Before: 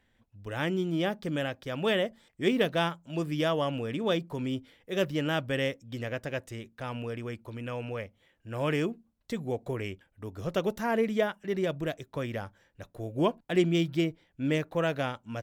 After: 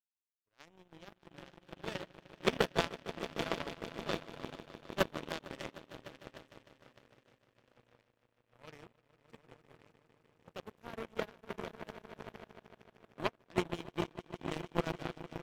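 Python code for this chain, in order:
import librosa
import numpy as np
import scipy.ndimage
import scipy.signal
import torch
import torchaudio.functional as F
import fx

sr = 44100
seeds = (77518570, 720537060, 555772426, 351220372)

y = fx.echo_swell(x, sr, ms=152, loudest=5, wet_db=-7.0)
y = fx.power_curve(y, sr, exponent=3.0)
y = fx.upward_expand(y, sr, threshold_db=-53.0, expansion=1.5)
y = F.gain(torch.from_numpy(y), 3.0).numpy()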